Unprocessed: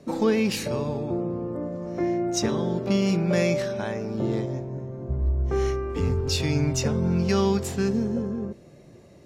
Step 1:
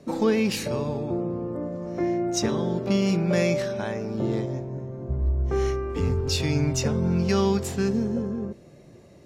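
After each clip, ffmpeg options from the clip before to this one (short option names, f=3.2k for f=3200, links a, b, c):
-af anull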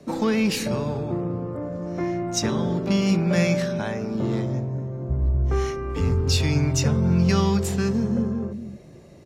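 -filter_complex "[0:a]acrossover=split=300|610|1800[a][b][c][d];[a]aecho=1:1:113.7|239.1:0.282|0.562[e];[b]asoftclip=type=tanh:threshold=-35.5dB[f];[e][f][c][d]amix=inputs=4:normalize=0,volume=2.5dB"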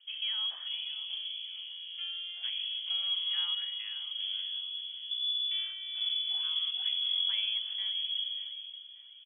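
-af "lowpass=f=3k:t=q:w=0.5098,lowpass=f=3k:t=q:w=0.6013,lowpass=f=3k:t=q:w=0.9,lowpass=f=3k:t=q:w=2.563,afreqshift=-3500,aderivative,aecho=1:1:585|1170|1755|2340:0.2|0.0758|0.0288|0.0109,volume=-5.5dB"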